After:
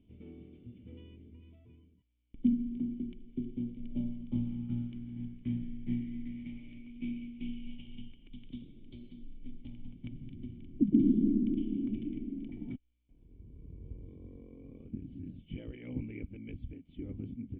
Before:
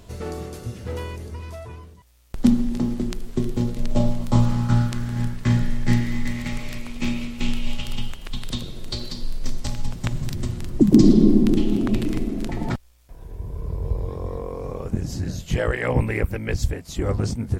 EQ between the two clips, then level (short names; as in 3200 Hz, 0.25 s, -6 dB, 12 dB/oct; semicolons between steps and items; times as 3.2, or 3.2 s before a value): vocal tract filter i; -8.0 dB